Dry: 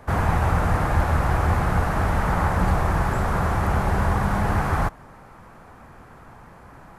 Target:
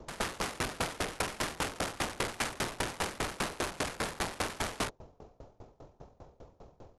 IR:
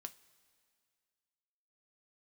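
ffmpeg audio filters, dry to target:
-filter_complex "[0:a]acrossover=split=350|3000[link_01][link_02][link_03];[link_01]acompressor=threshold=-28dB:ratio=6[link_04];[link_04][link_02][link_03]amix=inputs=3:normalize=0,aeval=exprs='(mod(12.6*val(0)+1,2)-1)/12.6':channel_layout=same,asetrate=24046,aresample=44100,atempo=1.83401,aeval=exprs='val(0)*pow(10,-25*if(lt(mod(5*n/s,1),2*abs(5)/1000),1-mod(5*n/s,1)/(2*abs(5)/1000),(mod(5*n/s,1)-2*abs(5)/1000)/(1-2*abs(5)/1000))/20)':channel_layout=same"

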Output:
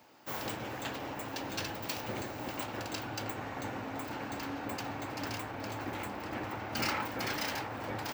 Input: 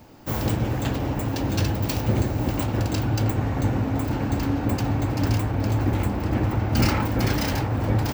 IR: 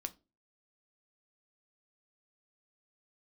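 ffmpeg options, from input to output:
-af "highpass=frequency=1200:poles=1,highshelf=frequency=4200:gain=-6.5,volume=-2.5dB"

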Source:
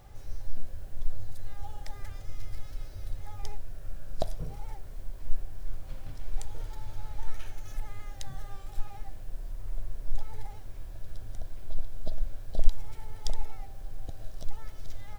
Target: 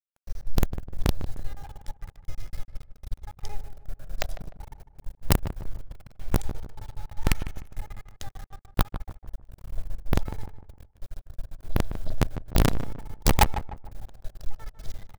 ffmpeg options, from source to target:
ffmpeg -i in.wav -filter_complex "[0:a]adynamicequalizer=threshold=0.00224:dfrequency=280:dqfactor=0.86:tfrequency=280:tqfactor=0.86:attack=5:release=100:ratio=0.375:range=2:mode=cutabove:tftype=bell,aeval=exprs='sgn(val(0))*max(abs(val(0))-0.0316,0)':channel_layout=same,aeval=exprs='0.447*(cos(1*acos(clip(val(0)/0.447,-1,1)))-cos(1*PI/2))+0.0631*(cos(4*acos(clip(val(0)/0.447,-1,1)))-cos(4*PI/2))':channel_layout=same,aeval=exprs='(mod(7.94*val(0)+1,2)-1)/7.94':channel_layout=same,asplit=2[link_01][link_02];[link_02]adelay=151,lowpass=frequency=1500:poles=1,volume=-11dB,asplit=2[link_03][link_04];[link_04]adelay=151,lowpass=frequency=1500:poles=1,volume=0.41,asplit=2[link_05][link_06];[link_06]adelay=151,lowpass=frequency=1500:poles=1,volume=0.41,asplit=2[link_07][link_08];[link_08]adelay=151,lowpass=frequency=1500:poles=1,volume=0.41[link_09];[link_01][link_03][link_05][link_07][link_09]amix=inputs=5:normalize=0,volume=5dB" out.wav

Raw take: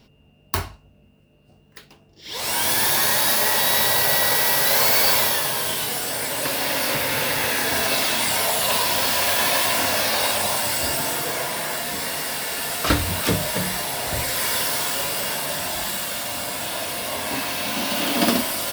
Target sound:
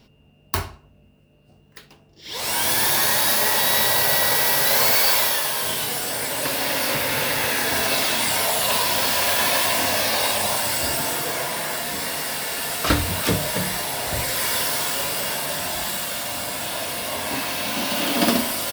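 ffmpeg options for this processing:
ffmpeg -i in.wav -filter_complex "[0:a]asettb=1/sr,asplit=3[link_01][link_02][link_03];[link_01]atrim=end=4.954[link_04];[link_02]atrim=start=4.95:end=5.62,asetpts=PTS-STARTPTS,afade=type=in:duration=0.004:curve=qsin,afade=type=out:start_time=0.666:duration=0.004:curve=qsin,lowshelf=frequency=340:gain=-8[link_05];[link_03]atrim=start=5.616[link_06];[link_04][link_05]acrossfade=duration=0.004:curve1=hsin:curve2=qsin[link_07];[link_07][link_06]acrossfade=duration=0.004:curve1=qsin:curve2=hsin,asettb=1/sr,asplit=3[link_08][link_09][link_10];[link_08]atrim=end=9.694[link_11];[link_09]atrim=start=9.69:end=10.45,asetpts=PTS-STARTPTS,afade=type=in:duration=0.004:curve=qsin,afade=type=out:start_time=0.756:duration=0.004:curve=qsin,bandreject=frequency=1400:width=12[link_12];[link_10]atrim=start=10.446[link_13];[link_11][link_12]acrossfade=duration=0.004:curve1=hsin:curve2=qsin[link_14];[link_14][link_13]acrossfade=duration=0.004:curve1=qsin:curve2=hsin,asplit=2[link_15][link_16];[link_16]adelay=74,lowpass=frequency=2000:poles=1,volume=-17dB,asplit=2[link_17][link_18];[link_18]adelay=74,lowpass=frequency=2000:poles=1,volume=0.44,asplit=2[link_19][link_20];[link_20]adelay=74,lowpass=frequency=2000:poles=1,volume=0.44,asplit=2[link_21][link_22];[link_22]adelay=74,lowpass=frequency=2000:poles=1,volume=0.44[link_23];[link_15][link_17][link_19][link_21][link_23]amix=inputs=5:normalize=0" out.wav

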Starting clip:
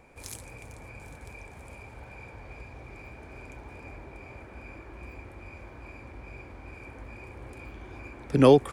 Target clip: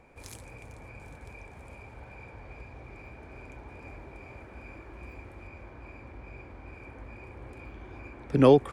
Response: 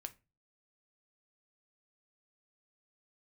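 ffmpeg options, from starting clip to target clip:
-af "asetnsamples=nb_out_samples=441:pad=0,asendcmd='3.81 highshelf g -3;5.47 highshelf g -9.5',highshelf=frequency=4900:gain=-7.5,volume=-1dB"

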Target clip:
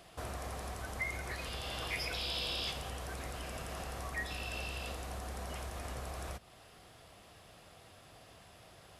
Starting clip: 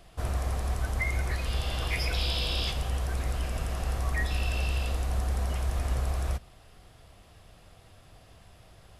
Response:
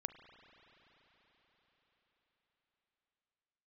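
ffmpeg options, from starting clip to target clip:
-af "acompressor=threshold=-36dB:ratio=2,highpass=frequency=220:poles=1,volume=1dB"

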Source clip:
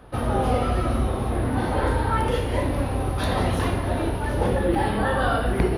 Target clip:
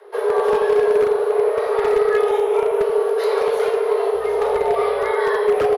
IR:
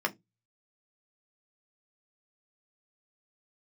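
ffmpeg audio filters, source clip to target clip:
-filter_complex "[0:a]lowshelf=frequency=120:gain=11.5,afreqshift=360,asettb=1/sr,asplit=3[link_01][link_02][link_03];[link_01]atrim=end=2.304[link_04];[link_02]atrim=start=2.3:end=2.82,asetpts=PTS-STARTPTS,afade=type=in:duration=0.004:curve=qsin,afade=type=out:start_time=0.516:duration=0.004:curve=qsin,equalizer=frequency=4600:width=3.5:gain=-14.5[link_05];[link_03]atrim=start=2.816[link_06];[link_04][link_05]acrossfade=duration=0.004:curve1=hsin:curve2=qsin[link_07];[link_07][link_06]acrossfade=duration=0.004:curve1=qsin:curve2=hsin,aeval=exprs='0.355*(abs(mod(val(0)/0.355+3,4)-2)-1)':channel_layout=same,asplit=2[link_08][link_09];[link_09]adelay=86,lowpass=frequency=2000:poles=1,volume=-9dB,asplit=2[link_10][link_11];[link_11]adelay=86,lowpass=frequency=2000:poles=1,volume=0.54,asplit=2[link_12][link_13];[link_13]adelay=86,lowpass=frequency=2000:poles=1,volume=0.54,asplit=2[link_14][link_15];[link_15]adelay=86,lowpass=frequency=2000:poles=1,volume=0.54,asplit=2[link_16][link_17];[link_17]adelay=86,lowpass=frequency=2000:poles=1,volume=0.54,asplit=2[link_18][link_19];[link_19]adelay=86,lowpass=frequency=2000:poles=1,volume=0.54[link_20];[link_08][link_10][link_12][link_14][link_16][link_18][link_20]amix=inputs=7:normalize=0,asettb=1/sr,asplit=3[link_21][link_22][link_23];[link_21]atrim=end=4.144[link_24];[link_22]atrim=start=4.14:end=5.12,asetpts=PTS-STARTPTS,afade=type=in:duration=0.004:curve=qsin,afade=type=out:start_time=0.976:duration=0.004:curve=qsin,aeval=exprs='val(0)+0.00562*(sin(2*PI*60*n/s)+sin(2*PI*2*60*n/s)/2+sin(2*PI*3*60*n/s)/3+sin(2*PI*4*60*n/s)/4+sin(2*PI*5*60*n/s)/5)':channel_layout=same[link_25];[link_23]atrim=start=5.116[link_26];[link_24][link_25]acrossfade=duration=0.004:curve1=hsin:curve2=qsin[link_27];[link_27][link_26]acrossfade=duration=0.004:curve1=qsin:curve2=hsin,volume=-2.5dB"

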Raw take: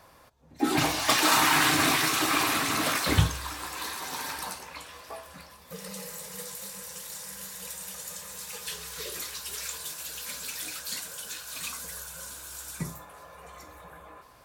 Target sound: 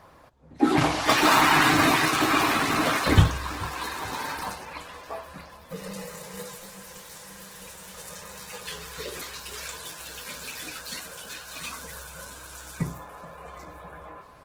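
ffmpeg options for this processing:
ffmpeg -i in.wav -filter_complex "[0:a]highshelf=frequency=3700:gain=-11,asettb=1/sr,asplit=3[link_01][link_02][link_03];[link_01]atrim=end=6.584[link_04];[link_02]atrim=start=6.58:end=7.97,asetpts=PTS-STARTPTS,afade=type=in:duration=0.004:curve=qsin,afade=type=out:start_time=1.386:duration=0.004:curve=qsin,aeval=exprs='clip(val(0),-1,0.00237)':channel_layout=same[link_05];[link_03]atrim=start=7.966[link_06];[link_04][link_05]acrossfade=duration=0.004:curve1=hsin:curve2=qsin[link_07];[link_07][link_06]acrossfade=duration=0.004:curve1=qsin:curve2=hsin,asplit=2[link_08][link_09];[link_09]aecho=0:1:431|862|1293:0.0944|0.0397|0.0167[link_10];[link_08][link_10]amix=inputs=2:normalize=0,volume=5.5dB" -ar 48000 -c:a libopus -b:a 16k out.opus

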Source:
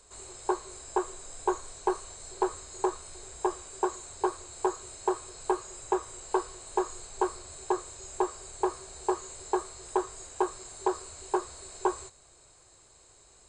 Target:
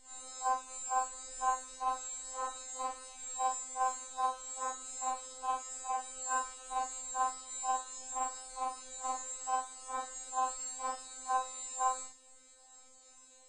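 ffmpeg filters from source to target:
ffmpeg -i in.wav -af "afftfilt=real='re':imag='-im':win_size=4096:overlap=0.75,afftfilt=real='re*3.46*eq(mod(b,12),0)':imag='im*3.46*eq(mod(b,12),0)':win_size=2048:overlap=0.75,volume=4dB" out.wav

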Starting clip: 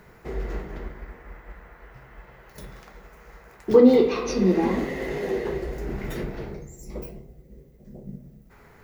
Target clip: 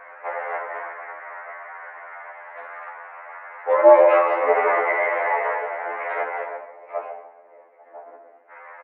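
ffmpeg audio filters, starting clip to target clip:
ffmpeg -i in.wav -filter_complex "[0:a]aeval=exprs='if(lt(val(0),0),0.447*val(0),val(0))':channel_layout=same,highpass=frequency=540:width_type=q:width=0.5412,highpass=frequency=540:width_type=q:width=1.307,lowpass=frequency=2000:width_type=q:width=0.5176,lowpass=frequency=2000:width_type=q:width=0.7071,lowpass=frequency=2000:width_type=q:width=1.932,afreqshift=86,asplit=2[link_01][link_02];[link_02]adelay=144,lowpass=frequency=1500:poles=1,volume=-13dB,asplit=2[link_03][link_04];[link_04]adelay=144,lowpass=frequency=1500:poles=1,volume=0.51,asplit=2[link_05][link_06];[link_06]adelay=144,lowpass=frequency=1500:poles=1,volume=0.51,asplit=2[link_07][link_08];[link_08]adelay=144,lowpass=frequency=1500:poles=1,volume=0.51,asplit=2[link_09][link_10];[link_10]adelay=144,lowpass=frequency=1500:poles=1,volume=0.51[link_11];[link_03][link_05][link_07][link_09][link_11]amix=inputs=5:normalize=0[link_12];[link_01][link_12]amix=inputs=2:normalize=0,alimiter=level_in=22dB:limit=-1dB:release=50:level=0:latency=1,afftfilt=real='re*2*eq(mod(b,4),0)':imag='im*2*eq(mod(b,4),0)':win_size=2048:overlap=0.75,volume=-3dB" out.wav

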